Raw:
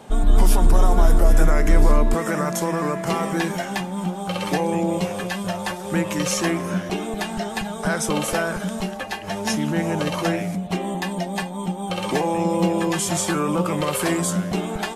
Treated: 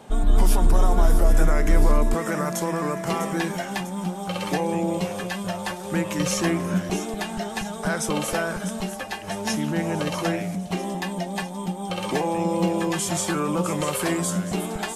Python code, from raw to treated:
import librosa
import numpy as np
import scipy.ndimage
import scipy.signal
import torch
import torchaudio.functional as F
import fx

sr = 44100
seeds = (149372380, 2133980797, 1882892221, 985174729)

y = fx.low_shelf(x, sr, hz=220.0, db=6.0, at=(6.19, 7.0))
y = fx.echo_wet_highpass(y, sr, ms=649, feedback_pct=56, hz=5400.0, wet_db=-8.5)
y = F.gain(torch.from_numpy(y), -2.5).numpy()